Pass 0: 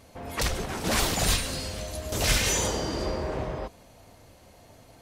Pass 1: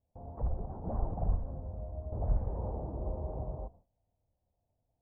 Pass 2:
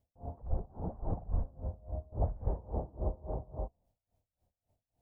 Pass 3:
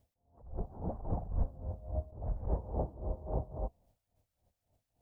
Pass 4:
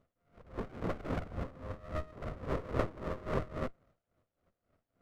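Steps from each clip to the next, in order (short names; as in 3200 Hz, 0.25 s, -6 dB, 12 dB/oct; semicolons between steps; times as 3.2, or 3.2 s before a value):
steep low-pass 810 Hz 36 dB/oct; gate with hold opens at -41 dBFS; bell 350 Hz -13.5 dB 2.5 oct
dB-linear tremolo 3.6 Hz, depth 24 dB; gain +5.5 dB
attack slew limiter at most 120 dB/s; gain +6.5 dB
band-pass 730 Hz, Q 0.75; running maximum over 33 samples; gain +10 dB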